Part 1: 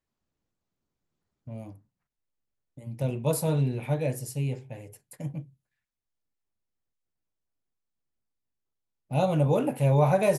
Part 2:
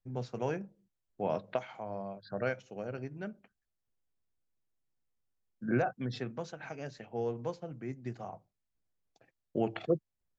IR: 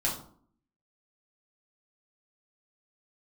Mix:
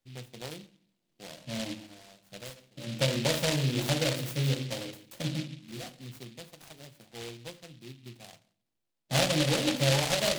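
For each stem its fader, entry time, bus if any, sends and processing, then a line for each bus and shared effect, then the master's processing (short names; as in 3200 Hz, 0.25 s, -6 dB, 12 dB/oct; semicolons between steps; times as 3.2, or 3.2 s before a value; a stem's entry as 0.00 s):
+2.0 dB, 0.00 s, send -6.5 dB, HPF 320 Hz 12 dB/oct; tilt -2 dB/oct; compressor 10:1, threshold -30 dBFS, peak gain reduction 14 dB
-8.0 dB, 0.00 s, send -18 dB, noise-modulated delay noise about 1600 Hz, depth 0.047 ms; auto duck -16 dB, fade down 0.40 s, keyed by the first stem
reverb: on, RT60 0.55 s, pre-delay 4 ms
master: notch 440 Hz, Q 13; noise-modulated delay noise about 3100 Hz, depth 0.22 ms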